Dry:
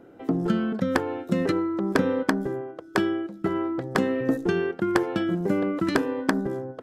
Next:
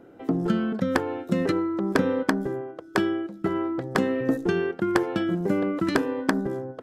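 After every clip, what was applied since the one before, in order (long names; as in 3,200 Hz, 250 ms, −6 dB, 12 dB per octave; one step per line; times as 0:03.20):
no processing that can be heard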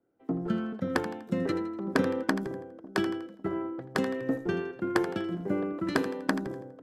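echo with a time of its own for lows and highs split 690 Hz, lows 551 ms, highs 82 ms, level −11 dB
multiband upward and downward expander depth 70%
level −6 dB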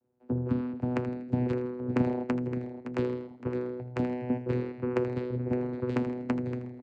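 channel vocoder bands 8, saw 124 Hz
on a send: repeating echo 565 ms, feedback 42%, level −11 dB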